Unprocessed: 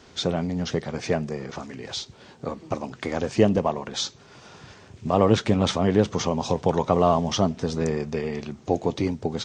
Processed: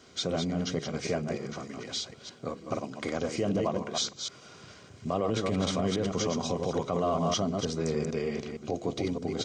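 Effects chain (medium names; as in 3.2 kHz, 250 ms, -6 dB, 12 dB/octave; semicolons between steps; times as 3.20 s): chunks repeated in reverse 153 ms, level -5.5 dB; comb of notches 880 Hz; peak limiter -15 dBFS, peak gain reduction 9.5 dB; treble shelf 4.9 kHz +6 dB; de-hum 69.89 Hz, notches 7; trim -4 dB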